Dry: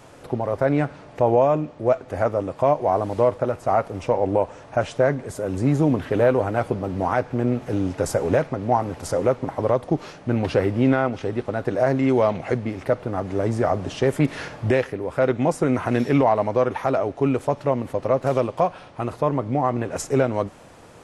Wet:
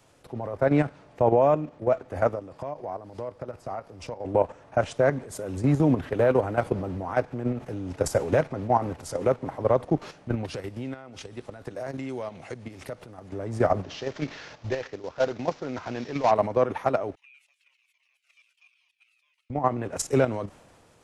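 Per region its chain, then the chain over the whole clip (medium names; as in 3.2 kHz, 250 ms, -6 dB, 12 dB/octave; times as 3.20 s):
2.35–4.25 s: peaking EQ 4.9 kHz +6.5 dB 0.34 oct + compression 3:1, threshold -28 dBFS
10.45–13.29 s: treble shelf 3.8 kHz +9.5 dB + compression 3:1, threshold -28 dBFS
13.83–16.31 s: CVSD coder 32 kbps + bass shelf 350 Hz -6 dB
17.15–19.50 s: chunks repeated in reverse 177 ms, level -4.5 dB + ladder high-pass 2.3 kHz, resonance 70% + Shepard-style flanger falling 1.2 Hz
whole clip: level held to a coarse grid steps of 10 dB; three bands expanded up and down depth 40%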